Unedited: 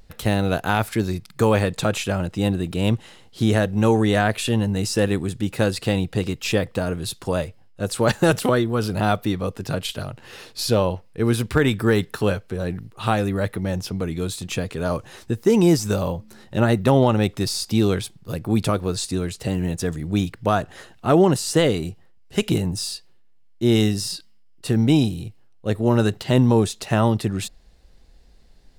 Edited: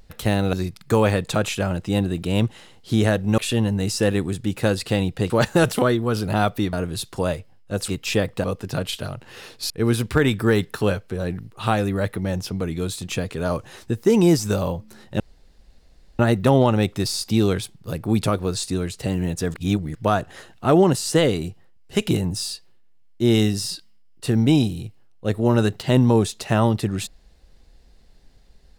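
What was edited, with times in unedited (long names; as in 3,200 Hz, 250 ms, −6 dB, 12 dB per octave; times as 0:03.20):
0:00.53–0:01.02: remove
0:03.87–0:04.34: remove
0:06.26–0:06.82: swap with 0:07.97–0:09.40
0:10.66–0:11.10: remove
0:16.60: splice in room tone 0.99 s
0:19.95–0:20.36: reverse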